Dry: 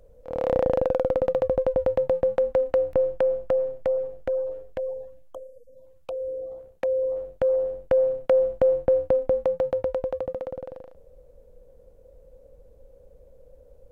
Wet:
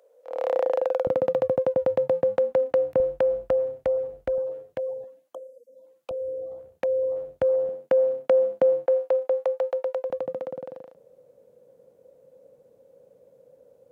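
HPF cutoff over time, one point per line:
HPF 24 dB/oct
440 Hz
from 1.07 s 110 Hz
from 3 s 43 Hz
from 4.38 s 100 Hz
from 5.04 s 230 Hz
from 6.11 s 70 Hz
from 7.69 s 170 Hz
from 8.86 s 460 Hz
from 10.1 s 140 Hz

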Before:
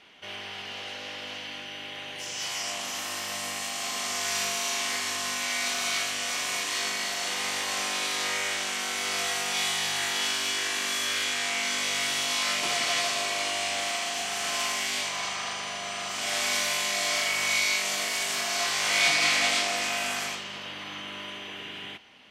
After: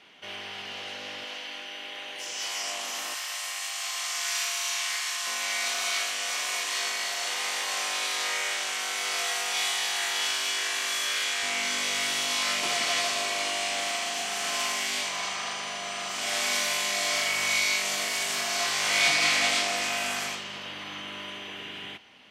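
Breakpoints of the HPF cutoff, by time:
100 Hz
from 1.24 s 330 Hz
from 3.14 s 1000 Hz
from 5.27 s 460 Hz
from 11.43 s 140 Hz
from 17.14 s 51 Hz

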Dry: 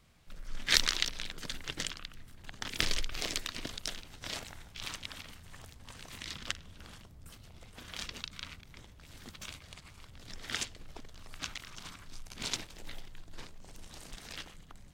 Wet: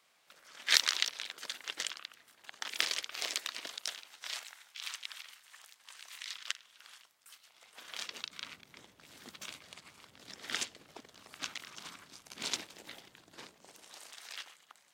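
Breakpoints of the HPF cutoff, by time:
3.68 s 610 Hz
4.56 s 1300 Hz
7.44 s 1300 Hz
7.86 s 530 Hz
8.58 s 240 Hz
13.49 s 240 Hz
14.18 s 840 Hz

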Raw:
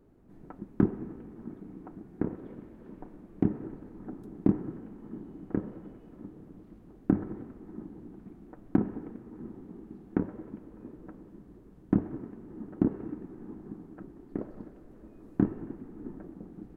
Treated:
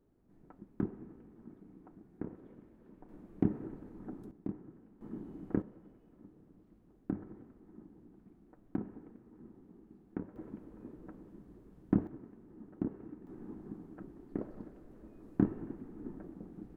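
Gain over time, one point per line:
-10.5 dB
from 3.09 s -3.5 dB
from 4.31 s -15 dB
from 5.01 s -2 dB
from 5.62 s -11.5 dB
from 10.36 s -3.5 dB
from 12.07 s -10 dB
from 13.27 s -3 dB

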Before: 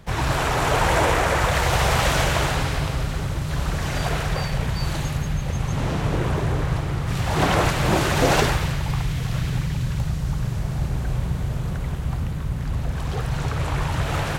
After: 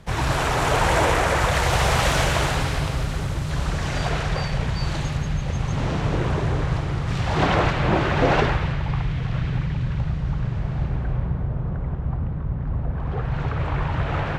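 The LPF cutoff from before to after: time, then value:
3.23 s 12000 Hz
4.14 s 6600 Hz
7.06 s 6600 Hz
7.93 s 2800 Hz
10.81 s 2800 Hz
11.5 s 1200 Hz
12.93 s 1200 Hz
13.4 s 2500 Hz

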